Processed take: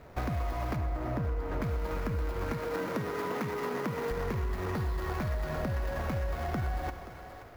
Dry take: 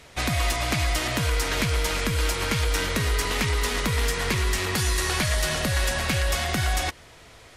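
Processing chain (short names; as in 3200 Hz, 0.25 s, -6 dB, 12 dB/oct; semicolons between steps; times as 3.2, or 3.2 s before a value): median filter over 15 samples; 0.76–1.62 high shelf 2100 Hz -11 dB; 2.53–4.11 HPF 140 Hz 24 dB/oct; thinning echo 0.527 s, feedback 43%, level -17 dB; Schroeder reverb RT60 1 s, combs from 32 ms, DRR 12 dB; compressor, threshold -30 dBFS, peak gain reduction 9.5 dB; ten-band EQ 2000 Hz -4 dB, 4000 Hz -3 dB, 8000 Hz -9 dB; gain +1 dB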